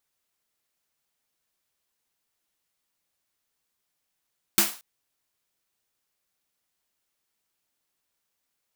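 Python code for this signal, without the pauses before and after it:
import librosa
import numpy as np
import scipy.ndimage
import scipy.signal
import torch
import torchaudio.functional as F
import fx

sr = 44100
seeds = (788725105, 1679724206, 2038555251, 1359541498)

y = fx.drum_snare(sr, seeds[0], length_s=0.23, hz=210.0, second_hz=340.0, noise_db=9, noise_from_hz=630.0, decay_s=0.23, noise_decay_s=0.37)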